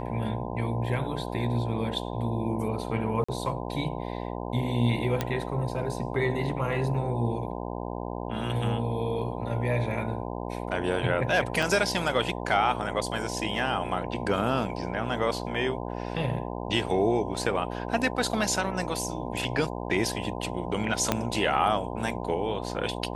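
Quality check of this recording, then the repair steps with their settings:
buzz 60 Hz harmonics 17 -34 dBFS
3.24–3.29 s: dropout 45 ms
5.21 s: pop -12 dBFS
11.62–11.63 s: dropout 5.5 ms
21.12 s: pop -8 dBFS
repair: de-click; de-hum 60 Hz, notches 17; interpolate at 3.24 s, 45 ms; interpolate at 11.62 s, 5.5 ms

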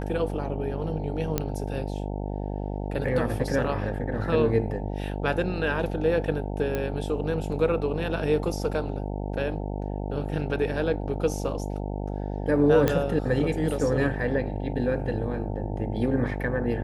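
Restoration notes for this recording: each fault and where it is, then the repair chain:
buzz 50 Hz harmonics 18 -31 dBFS
1.38 s: pop -10 dBFS
6.75 s: pop -15 dBFS
12.88 s: pop -9 dBFS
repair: de-click; de-hum 50 Hz, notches 18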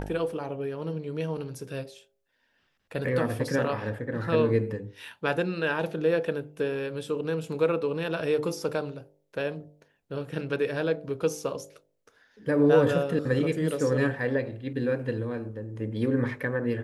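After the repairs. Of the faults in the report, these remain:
nothing left

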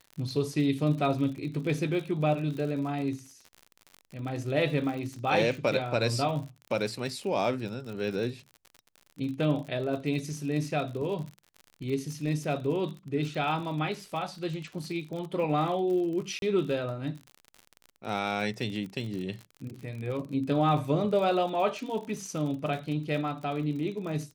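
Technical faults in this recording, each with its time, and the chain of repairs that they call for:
crackle 54 per s -36 dBFS
16.39–16.42 s: dropout 32 ms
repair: de-click; interpolate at 16.39 s, 32 ms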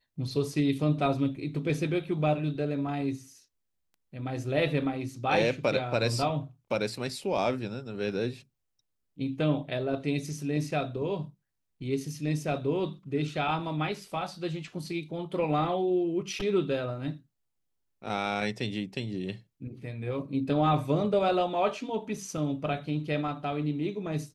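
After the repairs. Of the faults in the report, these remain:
nothing left

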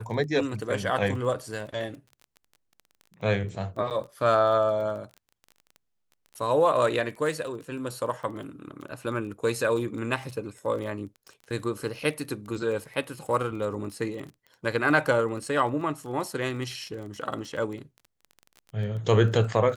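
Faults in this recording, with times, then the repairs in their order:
crackle 22 per s -36 dBFS
3.90–3.91 s: dropout 8.5 ms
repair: de-click; interpolate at 3.90 s, 8.5 ms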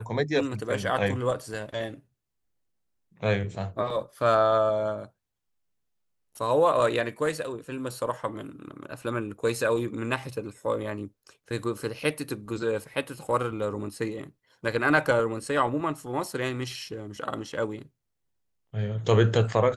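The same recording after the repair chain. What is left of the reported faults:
nothing left

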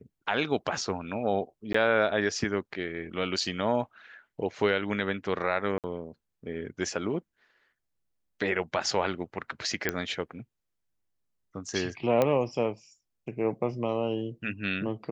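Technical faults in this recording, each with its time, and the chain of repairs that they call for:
1.73–1.74 s: dropout 14 ms
5.78–5.84 s: dropout 58 ms
9.89 s: pop -11 dBFS
12.22 s: pop -12 dBFS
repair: de-click; interpolate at 1.73 s, 14 ms; interpolate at 5.78 s, 58 ms

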